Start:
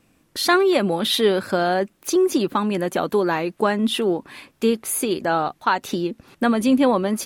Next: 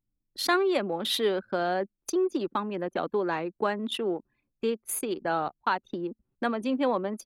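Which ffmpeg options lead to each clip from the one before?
-filter_complex "[0:a]anlmdn=398,acrossover=split=280|940[a][b][c];[a]acompressor=threshold=-32dB:ratio=6[d];[d][b][c]amix=inputs=3:normalize=0,volume=-7dB"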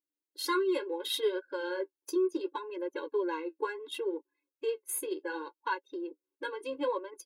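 -af "flanger=delay=6:depth=7.9:regen=-39:speed=0.7:shape=sinusoidal,crystalizer=i=0.5:c=0,afftfilt=real='re*eq(mod(floor(b*sr/1024/280),2),1)':imag='im*eq(mod(floor(b*sr/1024/280),2),1)':win_size=1024:overlap=0.75"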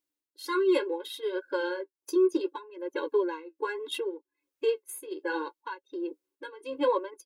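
-af "tremolo=f=1.3:d=0.81,volume=6.5dB"

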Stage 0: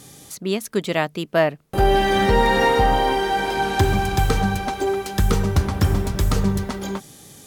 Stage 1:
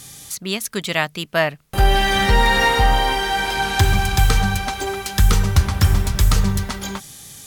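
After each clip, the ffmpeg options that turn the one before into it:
-af "equalizer=f=360:t=o:w=2.7:g=-12.5,volume=7dB"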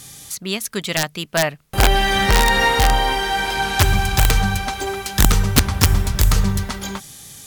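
-af "aeval=exprs='(mod(1.88*val(0)+1,2)-1)/1.88':c=same"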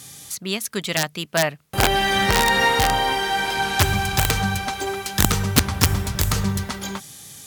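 -af "highpass=81,volume=-1.5dB"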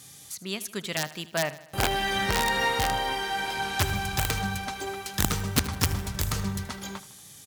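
-af "aecho=1:1:78|156|234|312|390:0.15|0.0808|0.0436|0.0236|0.0127,volume=-7.5dB"

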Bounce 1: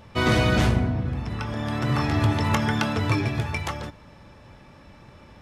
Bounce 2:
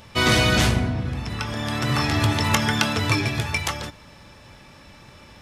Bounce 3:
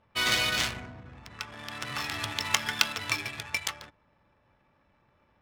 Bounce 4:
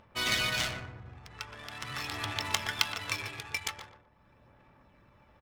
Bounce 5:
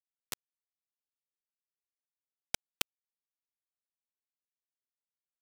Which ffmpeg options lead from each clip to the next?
-af "highshelf=f=2.2k:g=11.5"
-af "tiltshelf=f=790:g=-8.5,adynamicsmooth=sensitivity=2:basefreq=800,aeval=exprs='2*(cos(1*acos(clip(val(0)/2,-1,1)))-cos(1*PI/2))+0.158*(cos(7*acos(clip(val(0)/2,-1,1)))-cos(7*PI/2))':c=same,volume=-6.5dB"
-filter_complex "[0:a]aphaser=in_gain=1:out_gain=1:delay=2.5:decay=0.29:speed=0.43:type=sinusoidal,acompressor=mode=upward:threshold=-49dB:ratio=2.5,asplit=2[a][b];[b]adelay=120,lowpass=f=1k:p=1,volume=-4dB,asplit=2[c][d];[d]adelay=120,lowpass=f=1k:p=1,volume=0.43,asplit=2[e][f];[f]adelay=120,lowpass=f=1k:p=1,volume=0.43,asplit=2[g][h];[h]adelay=120,lowpass=f=1k:p=1,volume=0.43,asplit=2[i][j];[j]adelay=120,lowpass=f=1k:p=1,volume=0.43[k];[a][c][e][g][i][k]amix=inputs=6:normalize=0,volume=-4dB"
-af "afftfilt=real='hypot(re,im)*cos(2*PI*random(0))':imag='hypot(re,im)*sin(2*PI*random(1))':win_size=512:overlap=0.75,acrusher=bits=3:mix=0:aa=0.000001,volume=2.5dB"

